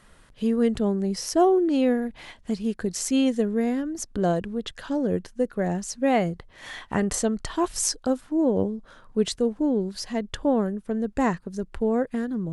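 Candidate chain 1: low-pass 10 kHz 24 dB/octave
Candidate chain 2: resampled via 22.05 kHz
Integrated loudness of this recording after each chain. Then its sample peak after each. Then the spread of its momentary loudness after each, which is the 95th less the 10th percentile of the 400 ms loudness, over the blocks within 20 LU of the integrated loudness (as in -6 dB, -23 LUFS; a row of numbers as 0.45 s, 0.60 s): -25.5 LUFS, -25.5 LUFS; -10.0 dBFS, -10.0 dBFS; 9 LU, 9 LU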